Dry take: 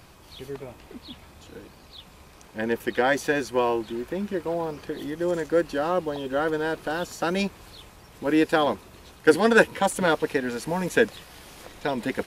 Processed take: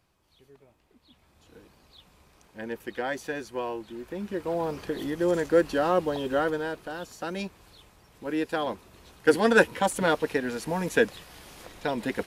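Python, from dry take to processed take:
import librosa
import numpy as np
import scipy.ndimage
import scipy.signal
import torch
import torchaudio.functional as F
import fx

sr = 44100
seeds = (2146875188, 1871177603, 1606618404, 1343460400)

y = fx.gain(x, sr, db=fx.line((0.96, -19.5), (1.57, -9.0), (3.87, -9.0), (4.73, 1.0), (6.31, 1.0), (6.86, -8.0), (8.49, -8.0), (9.46, -2.0)))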